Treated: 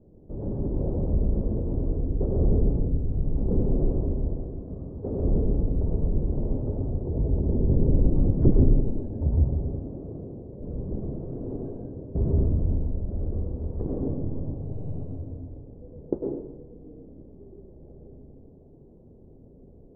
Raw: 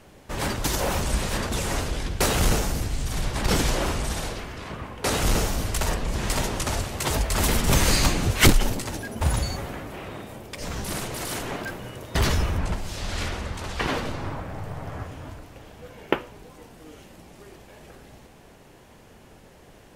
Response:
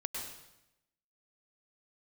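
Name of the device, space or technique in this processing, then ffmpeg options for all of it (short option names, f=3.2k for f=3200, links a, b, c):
next room: -filter_complex "[0:a]lowpass=f=470:w=0.5412,lowpass=f=470:w=1.3066[a];[1:a]atrim=start_sample=2205[b];[a][b]afir=irnorm=-1:irlink=0,asettb=1/sr,asplit=3[c][d][e];[c]atrim=end=7.034[f];[d]atrim=start=7.03:end=8.15,asetpts=PTS-STARTPTS,afade=t=in:d=0.004:c=qsin,afade=t=out:st=1.116:d=0.004:c=qsin,equalizer=f=1.7k:w=1.6:g=-14.5[g];[e]atrim=start=8.146[h];[f][g]acrossfade=d=0.004:c1=hsin:c2=qsin[i];[i][h]acrossfade=d=0.004:c1=qsin:c2=hsin"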